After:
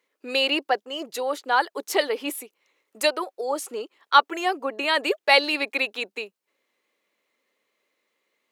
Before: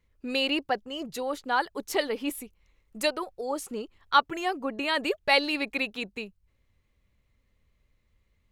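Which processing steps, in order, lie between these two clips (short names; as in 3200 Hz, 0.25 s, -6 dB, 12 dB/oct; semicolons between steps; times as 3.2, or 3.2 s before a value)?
HPF 330 Hz 24 dB/oct; gain +5 dB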